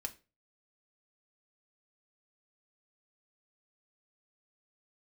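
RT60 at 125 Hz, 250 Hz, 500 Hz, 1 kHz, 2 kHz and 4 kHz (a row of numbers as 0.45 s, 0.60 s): 0.45 s, 0.35 s, 0.35 s, 0.25 s, 0.30 s, 0.25 s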